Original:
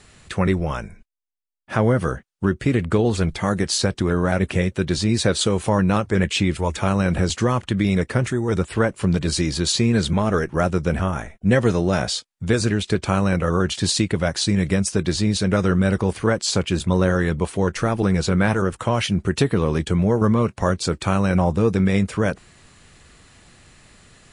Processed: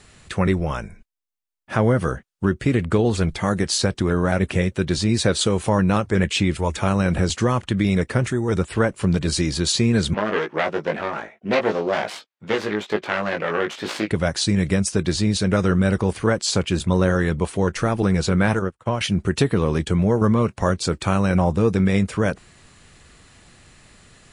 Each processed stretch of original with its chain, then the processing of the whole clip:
10.14–14.11 self-modulated delay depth 0.46 ms + BPF 340–3500 Hz + doubler 19 ms -4 dB
18.59–19.01 high shelf 4300 Hz -7 dB + upward expander 2.5:1, over -37 dBFS
whole clip: dry

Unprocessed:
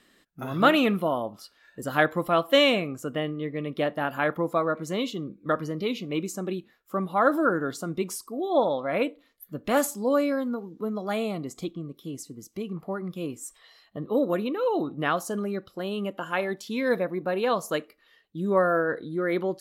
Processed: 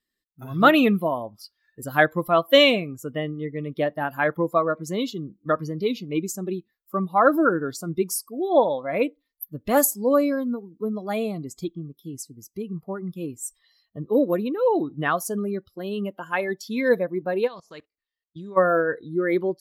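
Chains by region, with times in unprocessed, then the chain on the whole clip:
17.46–18.56 spectral contrast lowered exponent 0.69 + LPF 4900 Hz + level quantiser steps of 18 dB
whole clip: per-bin expansion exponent 1.5; bell 12000 Hz +8.5 dB 0.43 oct; AGC gain up to 7 dB

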